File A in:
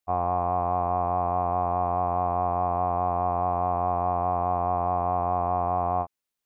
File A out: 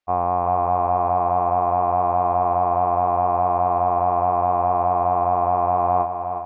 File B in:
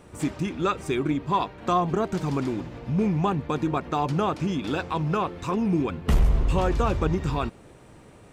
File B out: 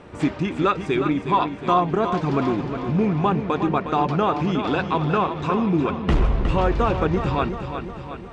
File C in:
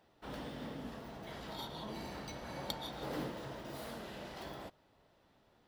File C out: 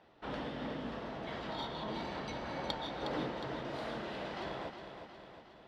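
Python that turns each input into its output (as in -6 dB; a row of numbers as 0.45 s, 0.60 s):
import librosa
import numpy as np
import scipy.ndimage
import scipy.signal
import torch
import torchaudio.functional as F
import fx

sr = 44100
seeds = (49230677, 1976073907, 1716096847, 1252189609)

p1 = scipy.signal.sosfilt(scipy.signal.butter(2, 3700.0, 'lowpass', fs=sr, output='sos'), x)
p2 = fx.low_shelf(p1, sr, hz=180.0, db=-5.5)
p3 = fx.rider(p2, sr, range_db=10, speed_s=0.5)
p4 = p2 + F.gain(torch.from_numpy(p3), -2.0).numpy()
y = fx.echo_feedback(p4, sr, ms=362, feedback_pct=57, wet_db=-8.5)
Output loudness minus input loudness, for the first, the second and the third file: +6.0 LU, +4.0 LU, +4.0 LU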